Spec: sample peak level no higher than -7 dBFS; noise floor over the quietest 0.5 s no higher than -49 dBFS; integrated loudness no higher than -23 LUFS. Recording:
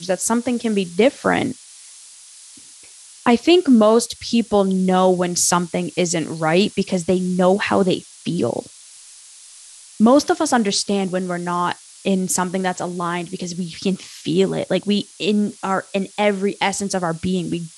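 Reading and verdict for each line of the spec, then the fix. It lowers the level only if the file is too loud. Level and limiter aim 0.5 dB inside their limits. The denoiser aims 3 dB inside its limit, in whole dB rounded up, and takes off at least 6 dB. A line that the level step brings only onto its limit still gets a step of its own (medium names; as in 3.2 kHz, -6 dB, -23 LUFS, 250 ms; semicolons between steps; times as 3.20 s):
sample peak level -3.5 dBFS: fail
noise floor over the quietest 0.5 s -43 dBFS: fail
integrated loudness -19.5 LUFS: fail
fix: noise reduction 6 dB, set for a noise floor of -43 dBFS; trim -4 dB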